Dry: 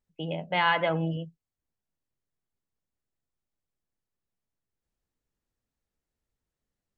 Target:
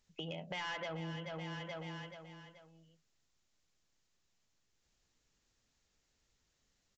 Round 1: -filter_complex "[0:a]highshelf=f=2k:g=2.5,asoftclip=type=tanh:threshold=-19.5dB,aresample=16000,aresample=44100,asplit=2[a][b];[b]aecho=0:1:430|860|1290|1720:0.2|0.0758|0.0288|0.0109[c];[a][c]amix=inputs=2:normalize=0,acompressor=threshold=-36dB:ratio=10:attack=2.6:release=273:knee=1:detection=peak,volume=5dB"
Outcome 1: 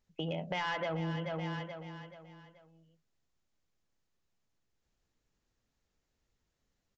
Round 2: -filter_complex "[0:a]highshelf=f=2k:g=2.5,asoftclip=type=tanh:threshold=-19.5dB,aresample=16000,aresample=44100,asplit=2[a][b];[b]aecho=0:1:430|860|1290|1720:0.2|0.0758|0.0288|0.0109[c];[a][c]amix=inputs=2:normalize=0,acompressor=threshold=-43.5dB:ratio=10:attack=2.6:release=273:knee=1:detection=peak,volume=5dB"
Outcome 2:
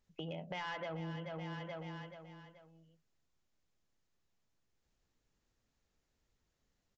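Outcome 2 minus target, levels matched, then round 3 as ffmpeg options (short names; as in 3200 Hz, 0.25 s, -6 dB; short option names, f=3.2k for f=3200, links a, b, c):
4000 Hz band -4.0 dB
-filter_complex "[0:a]highshelf=f=2k:g=12,asoftclip=type=tanh:threshold=-19.5dB,aresample=16000,aresample=44100,asplit=2[a][b];[b]aecho=0:1:430|860|1290|1720:0.2|0.0758|0.0288|0.0109[c];[a][c]amix=inputs=2:normalize=0,acompressor=threshold=-43.5dB:ratio=10:attack=2.6:release=273:knee=1:detection=peak,volume=5dB"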